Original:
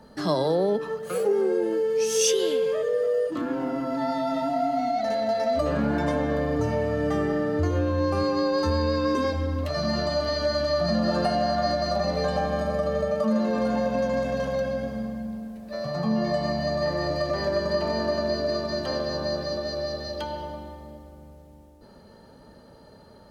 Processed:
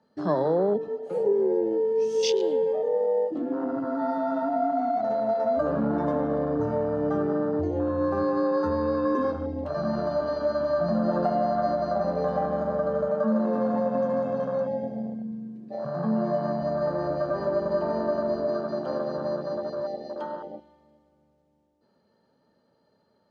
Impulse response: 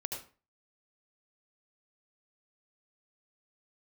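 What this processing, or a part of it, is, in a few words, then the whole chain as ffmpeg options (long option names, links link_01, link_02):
over-cleaned archive recording: -af "highpass=140,lowpass=6400,afwtdn=0.0398"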